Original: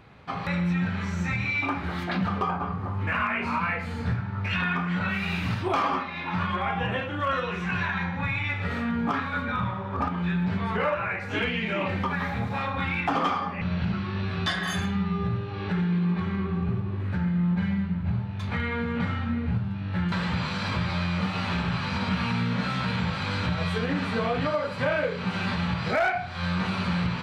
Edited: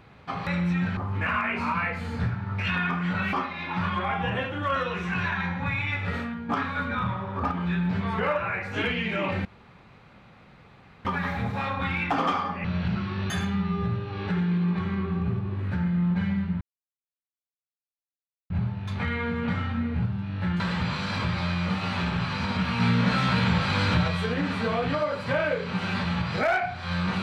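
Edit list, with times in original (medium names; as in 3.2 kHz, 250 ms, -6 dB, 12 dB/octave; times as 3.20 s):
0.97–2.83 s: delete
5.19–5.90 s: delete
8.73–9.06 s: fade out quadratic, to -9.5 dB
12.02 s: insert room tone 1.60 s
14.27–14.71 s: delete
18.02 s: insert silence 1.89 s
22.32–23.60 s: gain +4.5 dB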